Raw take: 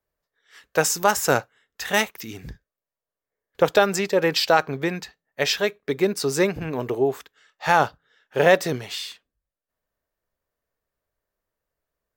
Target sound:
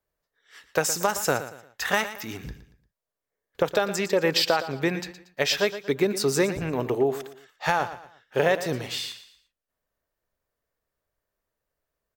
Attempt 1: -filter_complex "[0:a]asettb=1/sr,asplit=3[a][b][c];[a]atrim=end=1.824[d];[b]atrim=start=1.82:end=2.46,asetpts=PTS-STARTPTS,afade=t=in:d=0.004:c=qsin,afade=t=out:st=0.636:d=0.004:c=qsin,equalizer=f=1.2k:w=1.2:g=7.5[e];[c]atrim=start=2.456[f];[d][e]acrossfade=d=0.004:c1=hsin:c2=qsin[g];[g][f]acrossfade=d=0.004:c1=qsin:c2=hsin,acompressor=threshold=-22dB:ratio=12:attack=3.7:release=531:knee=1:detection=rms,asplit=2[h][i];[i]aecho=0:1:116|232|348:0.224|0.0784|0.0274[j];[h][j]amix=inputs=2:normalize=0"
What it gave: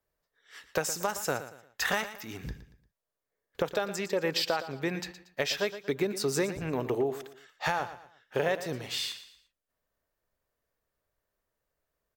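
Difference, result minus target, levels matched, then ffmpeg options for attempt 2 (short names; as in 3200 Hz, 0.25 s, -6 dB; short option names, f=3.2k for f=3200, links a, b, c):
compressor: peak gain reduction +7 dB
-filter_complex "[0:a]asettb=1/sr,asplit=3[a][b][c];[a]atrim=end=1.824[d];[b]atrim=start=1.82:end=2.46,asetpts=PTS-STARTPTS,afade=t=in:d=0.004:c=qsin,afade=t=out:st=0.636:d=0.004:c=qsin,equalizer=f=1.2k:w=1.2:g=7.5[e];[c]atrim=start=2.456[f];[d][e]acrossfade=d=0.004:c1=hsin:c2=qsin[g];[g][f]acrossfade=d=0.004:c1=qsin:c2=hsin,acompressor=threshold=-14.5dB:ratio=12:attack=3.7:release=531:knee=1:detection=rms,asplit=2[h][i];[i]aecho=0:1:116|232|348:0.224|0.0784|0.0274[j];[h][j]amix=inputs=2:normalize=0"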